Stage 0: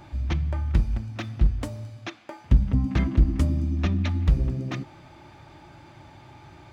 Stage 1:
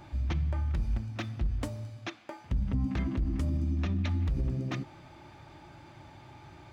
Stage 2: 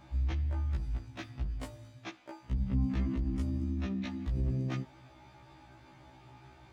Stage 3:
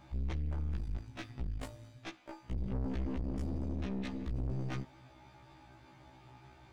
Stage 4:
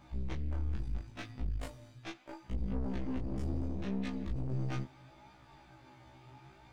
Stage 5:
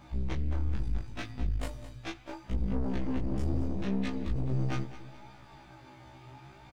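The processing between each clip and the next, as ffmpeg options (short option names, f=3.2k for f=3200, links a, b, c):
-af "alimiter=limit=-19.5dB:level=0:latency=1:release=58,volume=-3dB"
-af "afftfilt=real='re*1.73*eq(mod(b,3),0)':imag='im*1.73*eq(mod(b,3),0)':win_size=2048:overlap=0.75,volume=-2dB"
-af "aeval=exprs='(tanh(63.1*val(0)+0.75)-tanh(0.75))/63.1':c=same,volume=2.5dB"
-af "flanger=delay=19.5:depth=4.9:speed=0.74,volume=3.5dB"
-af "aecho=1:1:212|424|636|848:0.188|0.0829|0.0365|0.016,volume=5dB"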